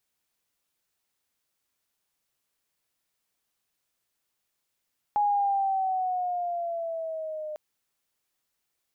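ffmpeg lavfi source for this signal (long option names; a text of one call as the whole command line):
ffmpeg -f lavfi -i "aevalsrc='pow(10,(-20.5-12*t/2.4)/20)*sin(2*PI*833*2.4/(-5.5*log(2)/12)*(exp(-5.5*log(2)/12*t/2.4)-1))':duration=2.4:sample_rate=44100" out.wav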